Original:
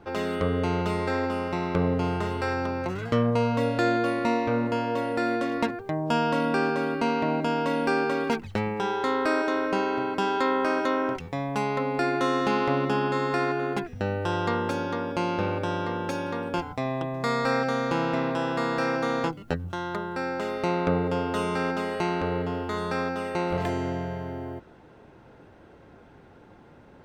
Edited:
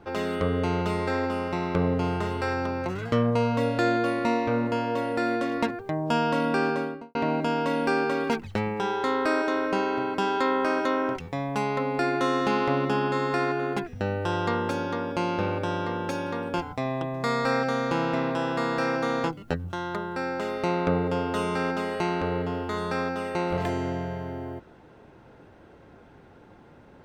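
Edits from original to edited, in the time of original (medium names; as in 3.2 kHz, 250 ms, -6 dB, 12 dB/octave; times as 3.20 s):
6.70–7.15 s: studio fade out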